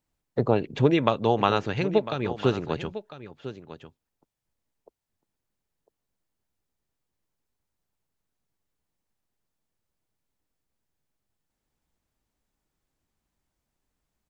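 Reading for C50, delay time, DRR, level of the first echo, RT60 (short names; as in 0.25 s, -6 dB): none, 1.001 s, none, -13.5 dB, none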